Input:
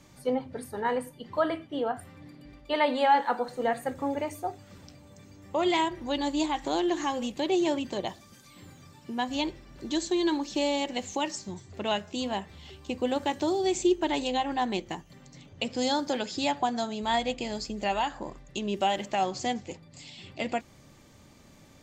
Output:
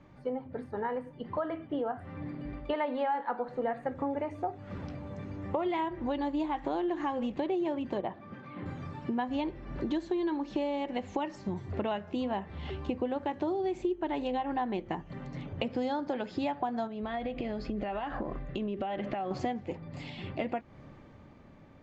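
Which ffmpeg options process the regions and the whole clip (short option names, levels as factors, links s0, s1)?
-filter_complex "[0:a]asettb=1/sr,asplit=3[s0][s1][s2];[s0]atrim=end=8.014[s3];[s1]atrim=start=8.01:end=8.66,asetpts=PTS-STARTPTS,afade=t=in:d=0.004:c=qsin,afade=t=out:st=0.646:d=0.004:c=qsin,highpass=120,lowpass=2400,acompressor=mode=upward:threshold=0.00158:ratio=2.5:attack=3.2:release=140:knee=2.83:detection=peak[s4];[s2]atrim=start=8.656[s5];[s3][s4]acrossfade=d=0.004:c1=hsin:c2=qsin[s6];[s6][s5]acrossfade=d=0.004:c1=qsin:c2=hsin,asettb=1/sr,asplit=3[s7][s8][s9];[s7]atrim=end=16.874[s10];[s8]atrim=start=16.87:end=19.31,asetpts=PTS-STARTPTS,afade=t=in:d=0.004:c=qsin,afade=t=out:st=2.436:d=0.004:c=qsin,lowpass=4600,acompressor=threshold=0.0126:ratio=6:attack=3.2:release=140:knee=1:detection=peak,bandreject=f=910:w=6[s11];[s9]atrim=start=19.306[s12];[s10][s11]acrossfade=d=0.004:c1=hsin:c2=qsin[s13];[s13][s12]acrossfade=d=0.004:c1=qsin:c2=hsin,dynaudnorm=f=200:g=17:m=3.98,lowpass=1800,acompressor=threshold=0.0282:ratio=5"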